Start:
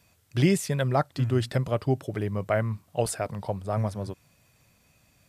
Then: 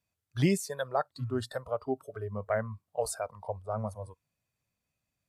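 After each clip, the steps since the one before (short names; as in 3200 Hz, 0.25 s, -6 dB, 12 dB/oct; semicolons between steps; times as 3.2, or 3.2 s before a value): spectral noise reduction 18 dB; gain -4 dB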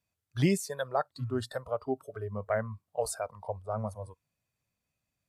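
nothing audible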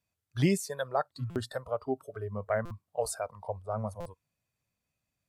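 stuck buffer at 1.3/2.65/4, samples 256, times 9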